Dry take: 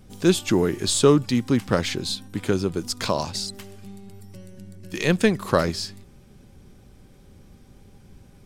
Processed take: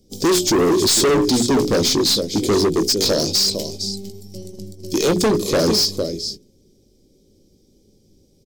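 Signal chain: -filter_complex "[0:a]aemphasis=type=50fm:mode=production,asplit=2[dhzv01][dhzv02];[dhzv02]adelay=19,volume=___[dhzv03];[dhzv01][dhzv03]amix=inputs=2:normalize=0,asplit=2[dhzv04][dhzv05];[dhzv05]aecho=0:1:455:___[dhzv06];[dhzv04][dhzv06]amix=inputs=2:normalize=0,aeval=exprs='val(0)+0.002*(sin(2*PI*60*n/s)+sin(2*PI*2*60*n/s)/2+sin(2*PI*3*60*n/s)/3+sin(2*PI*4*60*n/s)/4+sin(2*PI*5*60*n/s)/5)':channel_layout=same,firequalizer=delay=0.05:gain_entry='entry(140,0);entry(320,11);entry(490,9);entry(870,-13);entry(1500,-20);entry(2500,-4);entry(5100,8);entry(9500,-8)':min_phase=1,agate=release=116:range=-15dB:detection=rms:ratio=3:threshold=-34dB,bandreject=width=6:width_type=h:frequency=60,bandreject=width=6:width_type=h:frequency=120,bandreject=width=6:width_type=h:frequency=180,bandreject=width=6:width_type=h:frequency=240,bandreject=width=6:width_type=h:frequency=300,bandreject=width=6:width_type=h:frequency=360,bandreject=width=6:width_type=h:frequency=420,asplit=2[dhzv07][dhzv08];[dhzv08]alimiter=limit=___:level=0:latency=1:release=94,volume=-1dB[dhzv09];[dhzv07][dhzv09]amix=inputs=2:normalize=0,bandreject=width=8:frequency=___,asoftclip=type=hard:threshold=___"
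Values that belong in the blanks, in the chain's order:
-10.5dB, 0.224, -9dB, 2700, -13.5dB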